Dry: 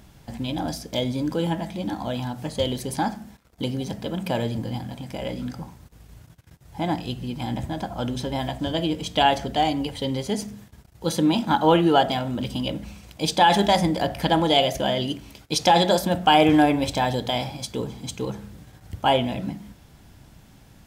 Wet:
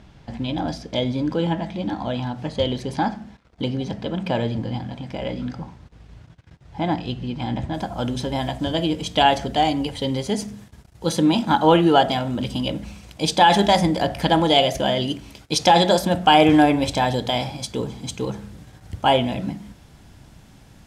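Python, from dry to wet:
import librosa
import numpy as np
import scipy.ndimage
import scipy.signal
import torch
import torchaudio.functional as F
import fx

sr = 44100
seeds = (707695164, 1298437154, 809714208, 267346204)

y = fx.lowpass(x, sr, hz=fx.steps((0.0, 4400.0), (7.74, 11000.0)), slope=12)
y = y * 10.0 ** (2.5 / 20.0)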